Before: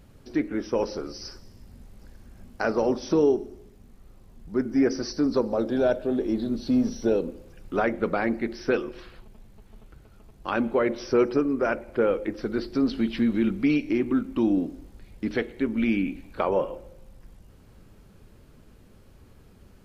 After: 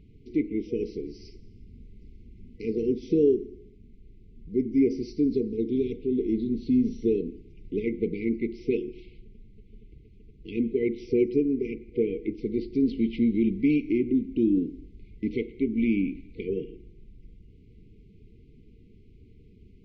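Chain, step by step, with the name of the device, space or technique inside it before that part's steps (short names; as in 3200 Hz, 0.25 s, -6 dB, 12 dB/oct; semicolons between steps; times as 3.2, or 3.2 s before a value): phone in a pocket (LPF 3600 Hz 12 dB/oct; high shelf 2500 Hz -9 dB); FFT band-reject 480–2000 Hz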